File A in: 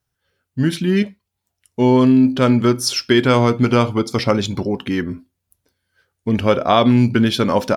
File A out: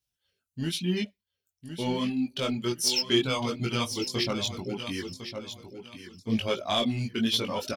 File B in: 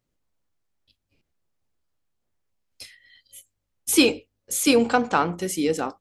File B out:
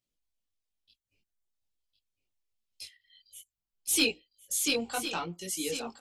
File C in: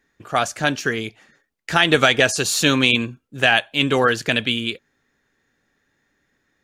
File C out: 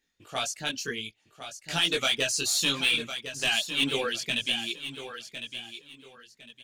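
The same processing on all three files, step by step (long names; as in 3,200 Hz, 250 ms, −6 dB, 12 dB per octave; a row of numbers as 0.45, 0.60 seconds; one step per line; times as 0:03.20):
reverb reduction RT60 0.95 s
high shelf with overshoot 2,200 Hz +8.5 dB, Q 1.5
soft clipping −4.5 dBFS
repeating echo 1,056 ms, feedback 27%, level −10 dB
multi-voice chorus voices 4, 0.98 Hz, delay 20 ms, depth 3 ms
level −9 dB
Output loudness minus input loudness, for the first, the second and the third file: −12.0, −8.5, −9.0 LU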